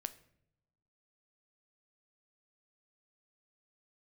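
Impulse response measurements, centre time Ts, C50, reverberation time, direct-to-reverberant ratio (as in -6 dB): 4 ms, 16.5 dB, no single decay rate, 11.5 dB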